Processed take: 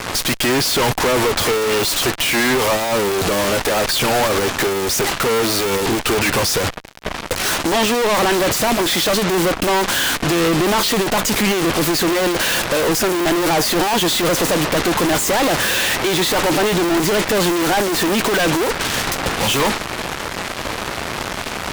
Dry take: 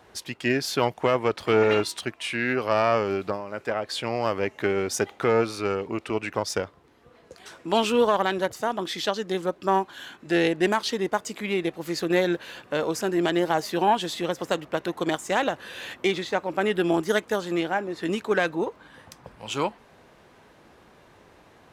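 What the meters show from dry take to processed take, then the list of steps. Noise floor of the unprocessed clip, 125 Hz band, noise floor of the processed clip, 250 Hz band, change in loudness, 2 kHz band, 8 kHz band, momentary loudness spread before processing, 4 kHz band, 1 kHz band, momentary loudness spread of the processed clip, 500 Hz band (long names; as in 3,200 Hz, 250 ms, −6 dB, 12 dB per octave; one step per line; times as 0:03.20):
−55 dBFS, +10.5 dB, −28 dBFS, +8.5 dB, +9.0 dB, +10.5 dB, +18.0 dB, 8 LU, +14.5 dB, +8.0 dB, 7 LU, +6.5 dB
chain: fuzz pedal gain 46 dB, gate −53 dBFS
harmonic generator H 3 −10 dB, 8 −7 dB, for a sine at −9.5 dBFS
level −1.5 dB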